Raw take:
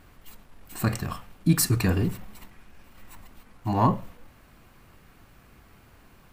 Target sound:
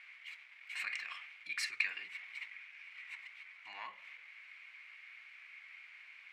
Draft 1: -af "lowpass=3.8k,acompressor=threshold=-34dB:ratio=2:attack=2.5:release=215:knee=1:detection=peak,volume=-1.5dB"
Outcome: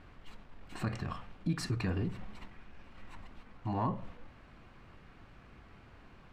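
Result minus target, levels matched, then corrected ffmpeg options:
2000 Hz band -16.0 dB
-af "lowpass=3.8k,acompressor=threshold=-34dB:ratio=2:attack=2.5:release=215:knee=1:detection=peak,highpass=f=2.2k:t=q:w=8.3,volume=-1.5dB"

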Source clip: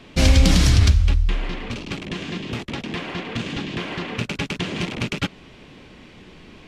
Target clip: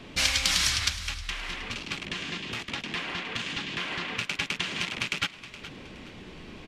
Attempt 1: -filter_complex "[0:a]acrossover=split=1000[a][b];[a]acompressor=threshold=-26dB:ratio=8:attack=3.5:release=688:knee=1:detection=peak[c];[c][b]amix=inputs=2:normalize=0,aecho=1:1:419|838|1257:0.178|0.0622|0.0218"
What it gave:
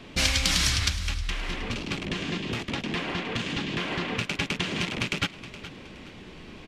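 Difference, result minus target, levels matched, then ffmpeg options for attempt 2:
compressor: peak gain reduction -9 dB
-filter_complex "[0:a]acrossover=split=1000[a][b];[a]acompressor=threshold=-36dB:ratio=8:attack=3.5:release=688:knee=1:detection=peak[c];[c][b]amix=inputs=2:normalize=0,aecho=1:1:419|838|1257:0.178|0.0622|0.0218"

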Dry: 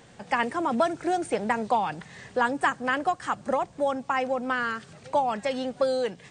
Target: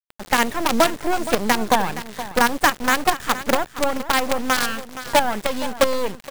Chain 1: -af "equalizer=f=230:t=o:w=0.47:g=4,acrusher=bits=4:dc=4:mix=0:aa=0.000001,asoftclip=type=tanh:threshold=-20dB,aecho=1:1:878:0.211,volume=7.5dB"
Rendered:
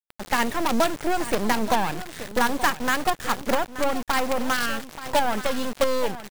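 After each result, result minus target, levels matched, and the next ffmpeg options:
echo 0.408 s late; soft clip: distortion +15 dB
-af "equalizer=f=230:t=o:w=0.47:g=4,acrusher=bits=4:dc=4:mix=0:aa=0.000001,asoftclip=type=tanh:threshold=-20dB,aecho=1:1:470:0.211,volume=7.5dB"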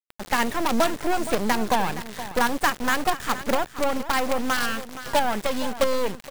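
soft clip: distortion +15 dB
-af "equalizer=f=230:t=o:w=0.47:g=4,acrusher=bits=4:dc=4:mix=0:aa=0.000001,asoftclip=type=tanh:threshold=-9dB,aecho=1:1:470:0.211,volume=7.5dB"

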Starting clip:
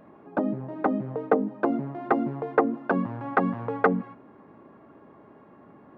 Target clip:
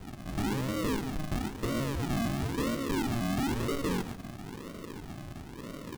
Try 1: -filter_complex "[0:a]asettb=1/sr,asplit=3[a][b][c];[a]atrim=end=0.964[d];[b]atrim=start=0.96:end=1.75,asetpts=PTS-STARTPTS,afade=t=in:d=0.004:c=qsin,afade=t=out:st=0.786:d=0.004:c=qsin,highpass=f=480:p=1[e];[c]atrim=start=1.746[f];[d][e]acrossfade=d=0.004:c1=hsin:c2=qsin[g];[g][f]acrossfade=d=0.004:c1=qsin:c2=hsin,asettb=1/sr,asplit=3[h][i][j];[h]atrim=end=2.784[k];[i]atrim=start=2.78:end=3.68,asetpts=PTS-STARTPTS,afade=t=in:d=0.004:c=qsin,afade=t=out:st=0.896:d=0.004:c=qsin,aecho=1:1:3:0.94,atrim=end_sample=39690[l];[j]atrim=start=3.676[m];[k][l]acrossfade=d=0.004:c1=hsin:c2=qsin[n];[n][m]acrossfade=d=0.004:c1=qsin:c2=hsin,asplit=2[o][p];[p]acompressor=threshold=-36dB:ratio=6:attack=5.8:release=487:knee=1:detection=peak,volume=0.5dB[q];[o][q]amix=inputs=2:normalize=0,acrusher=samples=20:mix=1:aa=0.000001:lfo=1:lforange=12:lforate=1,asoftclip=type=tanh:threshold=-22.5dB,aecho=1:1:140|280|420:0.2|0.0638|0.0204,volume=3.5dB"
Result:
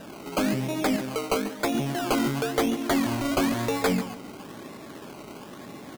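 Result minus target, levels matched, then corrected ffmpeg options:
decimation with a swept rate: distortion -18 dB; soft clip: distortion -4 dB
-filter_complex "[0:a]asettb=1/sr,asplit=3[a][b][c];[a]atrim=end=0.964[d];[b]atrim=start=0.96:end=1.75,asetpts=PTS-STARTPTS,afade=t=in:d=0.004:c=qsin,afade=t=out:st=0.786:d=0.004:c=qsin,highpass=f=480:p=1[e];[c]atrim=start=1.746[f];[d][e]acrossfade=d=0.004:c1=hsin:c2=qsin[g];[g][f]acrossfade=d=0.004:c1=qsin:c2=hsin,asettb=1/sr,asplit=3[h][i][j];[h]atrim=end=2.784[k];[i]atrim=start=2.78:end=3.68,asetpts=PTS-STARTPTS,afade=t=in:d=0.004:c=qsin,afade=t=out:st=0.896:d=0.004:c=qsin,aecho=1:1:3:0.94,atrim=end_sample=39690[l];[j]atrim=start=3.676[m];[k][l]acrossfade=d=0.004:c1=hsin:c2=qsin[n];[n][m]acrossfade=d=0.004:c1=qsin:c2=hsin,asplit=2[o][p];[p]acompressor=threshold=-36dB:ratio=6:attack=5.8:release=487:knee=1:detection=peak,volume=0.5dB[q];[o][q]amix=inputs=2:normalize=0,acrusher=samples=74:mix=1:aa=0.000001:lfo=1:lforange=44.4:lforate=1,asoftclip=type=tanh:threshold=-31.5dB,aecho=1:1:140|280|420:0.2|0.0638|0.0204,volume=3.5dB"

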